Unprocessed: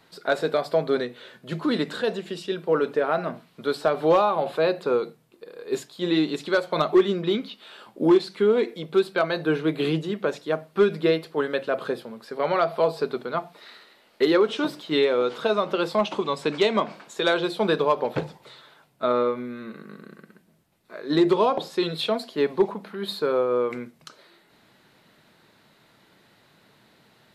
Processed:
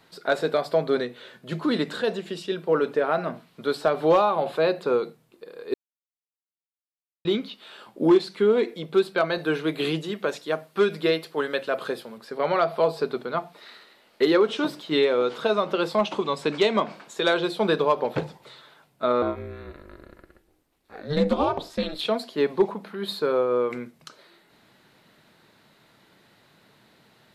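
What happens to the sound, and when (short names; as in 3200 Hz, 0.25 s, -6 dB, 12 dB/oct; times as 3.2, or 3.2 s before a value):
5.74–7.25 mute
9.38–12.18 tilt +1.5 dB/oct
19.22–22.05 ring modulator 150 Hz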